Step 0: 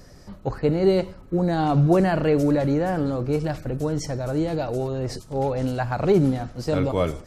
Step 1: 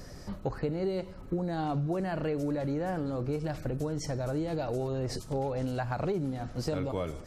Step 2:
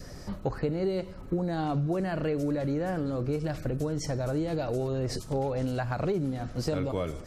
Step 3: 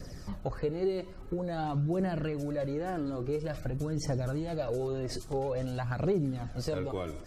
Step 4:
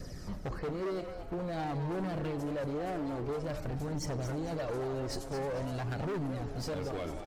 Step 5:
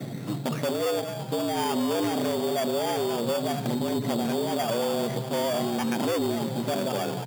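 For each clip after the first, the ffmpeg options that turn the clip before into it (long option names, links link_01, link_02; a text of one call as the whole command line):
ffmpeg -i in.wav -af "acompressor=threshold=-31dB:ratio=6,volume=1.5dB" out.wav
ffmpeg -i in.wav -af "adynamicequalizer=threshold=0.00282:dfrequency=850:dqfactor=3.2:tfrequency=850:tqfactor=3.2:attack=5:release=100:ratio=0.375:range=2.5:mode=cutabove:tftype=bell,volume=2.5dB" out.wav
ffmpeg -i in.wav -af "aphaser=in_gain=1:out_gain=1:delay=3.2:decay=0.42:speed=0.49:type=triangular,volume=-4dB" out.wav
ffmpeg -i in.wav -filter_complex "[0:a]volume=33dB,asoftclip=hard,volume=-33dB,asplit=5[link_01][link_02][link_03][link_04][link_05];[link_02]adelay=222,afreqshift=150,volume=-10dB[link_06];[link_03]adelay=444,afreqshift=300,volume=-19.1dB[link_07];[link_04]adelay=666,afreqshift=450,volume=-28.2dB[link_08];[link_05]adelay=888,afreqshift=600,volume=-37.4dB[link_09];[link_01][link_06][link_07][link_08][link_09]amix=inputs=5:normalize=0" out.wav
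ffmpeg -i in.wav -af "lowpass=frequency=3300:width_type=q:width=0.5098,lowpass=frequency=3300:width_type=q:width=0.6013,lowpass=frequency=3300:width_type=q:width=0.9,lowpass=frequency=3300:width_type=q:width=2.563,afreqshift=-3900,acrusher=samples=11:mix=1:aa=0.000001,volume=8.5dB" out.wav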